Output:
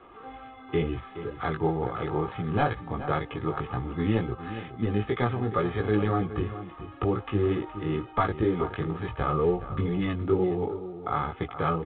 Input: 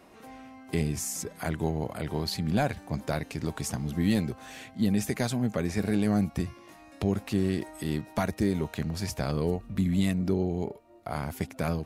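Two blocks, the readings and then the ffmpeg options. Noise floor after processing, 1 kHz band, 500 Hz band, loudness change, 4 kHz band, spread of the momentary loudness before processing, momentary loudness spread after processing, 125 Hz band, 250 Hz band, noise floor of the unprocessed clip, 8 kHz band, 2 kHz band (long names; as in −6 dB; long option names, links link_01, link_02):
−47 dBFS, +7.5 dB, +5.0 dB, +1.0 dB, −5.0 dB, 9 LU, 8 LU, +0.5 dB, −1.5 dB, −52 dBFS, below −40 dB, +2.0 dB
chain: -filter_complex "[0:a]lowpass=frequency=2900:width=0.5412,lowpass=frequency=2900:width=1.3066,equalizer=frequency=1200:width=4.6:gain=13.5,aecho=1:1:2.4:0.6,flanger=delay=16.5:depth=2.7:speed=2.1,acrossover=split=470|1700[link_01][link_02][link_03];[link_03]acrusher=samples=8:mix=1:aa=0.000001[link_04];[link_01][link_02][link_04]amix=inputs=3:normalize=0,asplit=2[link_05][link_06];[link_06]adelay=419.8,volume=-12dB,highshelf=frequency=4000:gain=-9.45[link_07];[link_05][link_07]amix=inputs=2:normalize=0,volume=4.5dB" -ar 8000 -c:a pcm_mulaw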